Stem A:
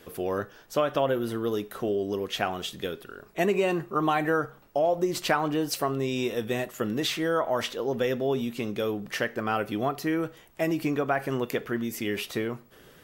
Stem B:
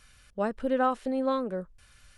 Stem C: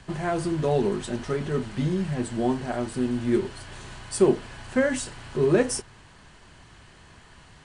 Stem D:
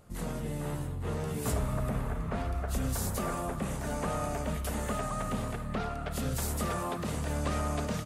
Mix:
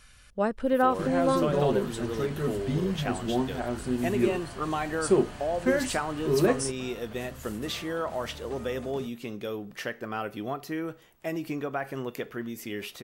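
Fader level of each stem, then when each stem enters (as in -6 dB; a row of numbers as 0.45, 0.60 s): -5.5, +2.5, -3.0, -13.0 dB; 0.65, 0.00, 0.90, 1.05 s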